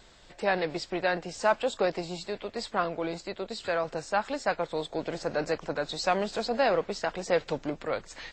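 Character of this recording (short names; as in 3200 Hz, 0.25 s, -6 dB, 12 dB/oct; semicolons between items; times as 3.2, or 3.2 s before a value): noise floor -54 dBFS; spectral tilt -4.0 dB/oct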